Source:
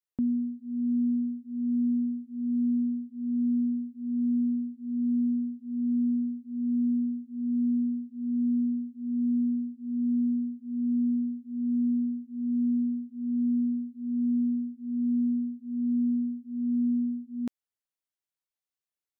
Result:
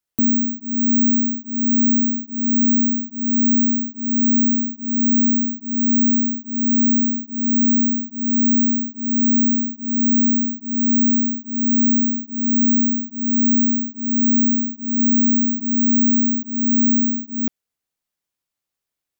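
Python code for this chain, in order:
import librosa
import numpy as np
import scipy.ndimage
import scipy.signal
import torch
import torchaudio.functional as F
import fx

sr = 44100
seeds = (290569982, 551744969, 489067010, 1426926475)

y = (np.kron(x[::2], np.eye(2)[0]) * 2)[:len(x)]
y = fx.low_shelf(y, sr, hz=340.0, db=4.0)
y = fx.env_flatten(y, sr, amount_pct=50, at=(14.99, 16.43))
y = F.gain(torch.from_numpy(y), 5.0).numpy()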